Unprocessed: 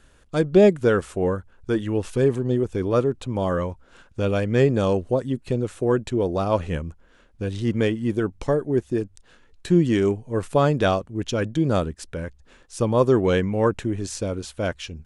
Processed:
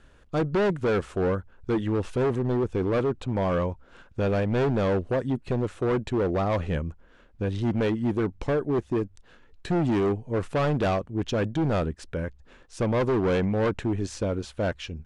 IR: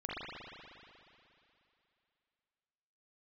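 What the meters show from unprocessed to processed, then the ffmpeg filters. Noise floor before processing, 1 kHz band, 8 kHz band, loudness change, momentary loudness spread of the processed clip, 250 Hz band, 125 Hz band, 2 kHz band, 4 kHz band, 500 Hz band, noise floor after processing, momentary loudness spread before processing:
−55 dBFS, −2.5 dB, can't be measured, −4.0 dB, 7 LU, −3.5 dB, −3.0 dB, −2.5 dB, −4.5 dB, −4.5 dB, −55 dBFS, 12 LU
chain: -af "volume=21dB,asoftclip=hard,volume=-21dB,aemphasis=mode=reproduction:type=50fm"

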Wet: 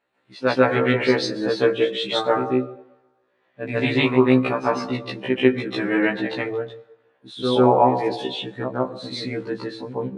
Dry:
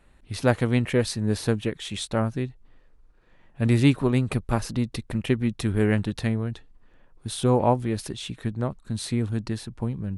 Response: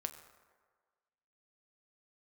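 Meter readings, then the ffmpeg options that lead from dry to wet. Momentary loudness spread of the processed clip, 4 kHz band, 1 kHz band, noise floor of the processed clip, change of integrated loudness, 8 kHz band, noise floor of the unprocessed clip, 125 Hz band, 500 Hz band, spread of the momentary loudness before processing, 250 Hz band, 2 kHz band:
13 LU, +7.0 dB, +8.5 dB, −67 dBFS, +4.0 dB, can't be measured, −56 dBFS, −5.5 dB, +7.5 dB, 11 LU, +2.5 dB, +8.5 dB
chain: -filter_complex "[0:a]highpass=340,lowpass=4800,asplit=2[link_01][link_02];[1:a]atrim=start_sample=2205,adelay=145[link_03];[link_02][link_03]afir=irnorm=-1:irlink=0,volume=7.5dB[link_04];[link_01][link_04]amix=inputs=2:normalize=0,afftdn=noise_reduction=13:noise_floor=-33,alimiter=level_in=5.5dB:limit=-1dB:release=50:level=0:latency=1,afftfilt=real='re*1.73*eq(mod(b,3),0)':imag='im*1.73*eq(mod(b,3),0)':win_size=2048:overlap=0.75"

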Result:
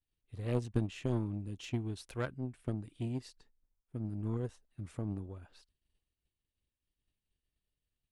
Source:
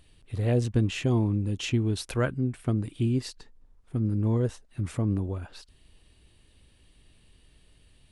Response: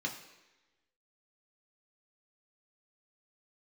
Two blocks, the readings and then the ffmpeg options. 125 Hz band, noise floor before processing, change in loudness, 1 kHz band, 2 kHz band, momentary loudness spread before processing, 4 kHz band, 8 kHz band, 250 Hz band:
−11.0 dB, −61 dBFS, −10.5 dB, −9.0 dB, −11.0 dB, 10 LU, −13.5 dB, −14.0 dB, −10.5 dB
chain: -af "aeval=exprs='0.224*(cos(1*acos(clip(val(0)/0.224,-1,1)))-cos(1*PI/2))+0.0501*(cos(3*acos(clip(val(0)/0.224,-1,1)))-cos(3*PI/2))':channel_layout=same,agate=range=-33dB:threshold=-56dB:ratio=3:detection=peak,volume=-5dB"

